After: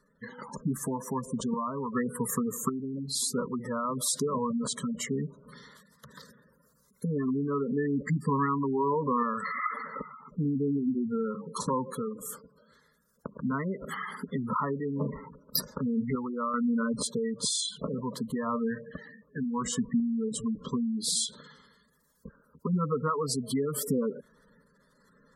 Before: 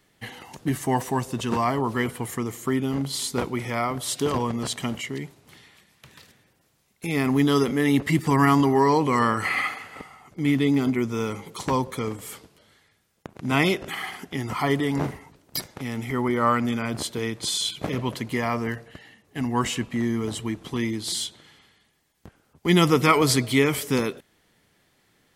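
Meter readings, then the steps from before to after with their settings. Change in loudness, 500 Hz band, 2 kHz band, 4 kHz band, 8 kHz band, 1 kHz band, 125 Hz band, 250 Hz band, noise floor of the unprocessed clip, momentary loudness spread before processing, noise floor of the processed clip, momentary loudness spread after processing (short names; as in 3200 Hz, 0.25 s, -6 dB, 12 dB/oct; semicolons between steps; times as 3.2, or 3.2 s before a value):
-6.5 dB, -6.5 dB, -13.0 dB, -7.5 dB, -1.0 dB, -7.5 dB, -8.0 dB, -5.5 dB, -66 dBFS, 13 LU, -67 dBFS, 10 LU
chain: compressor 6:1, threshold -28 dBFS, peak gain reduction 14.5 dB; fixed phaser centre 500 Hz, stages 8; spectral gate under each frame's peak -15 dB strong; random-step tremolo 2.6 Hz; gain +7.5 dB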